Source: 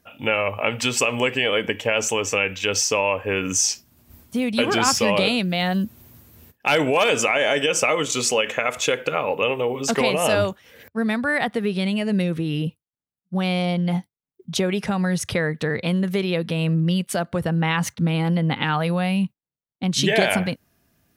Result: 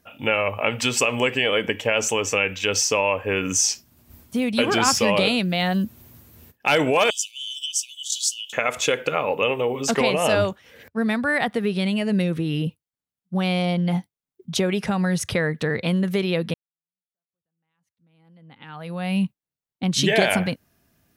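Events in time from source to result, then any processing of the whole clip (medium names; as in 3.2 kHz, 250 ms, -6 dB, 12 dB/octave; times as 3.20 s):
7.10–8.53 s: steep high-pass 3 kHz 96 dB/octave
9.94–11.01 s: treble shelf 9.8 kHz -7 dB
16.54–19.17 s: fade in exponential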